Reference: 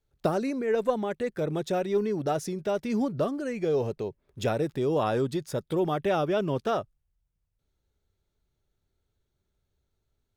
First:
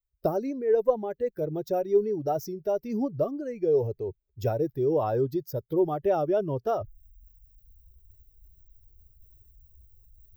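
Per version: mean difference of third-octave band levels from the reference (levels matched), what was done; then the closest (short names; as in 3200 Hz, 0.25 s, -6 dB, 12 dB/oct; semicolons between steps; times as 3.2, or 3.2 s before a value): 8.0 dB: per-bin expansion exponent 1.5; reverse; upward compressor, threshold -33 dBFS; reverse; EQ curve 120 Hz 0 dB, 180 Hz -8 dB, 270 Hz -4 dB, 400 Hz +1 dB, 680 Hz -1 dB, 1900 Hz -13 dB, 3700 Hz -16 dB, 5700 Hz -4 dB, 9700 Hz -27 dB, 14000 Hz +11 dB; gain +4.5 dB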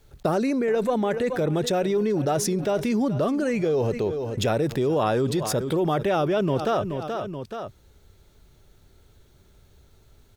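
3.5 dB: gate -49 dBFS, range -18 dB; feedback echo 0.428 s, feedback 23%, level -20.5 dB; fast leveller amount 70%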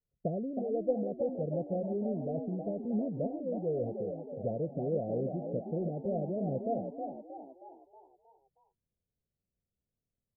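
12.5 dB: sample leveller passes 1; rippled Chebyshev low-pass 720 Hz, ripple 9 dB; on a send: frequency-shifting echo 0.316 s, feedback 48%, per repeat +45 Hz, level -6 dB; on the sum: gain -5.5 dB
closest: second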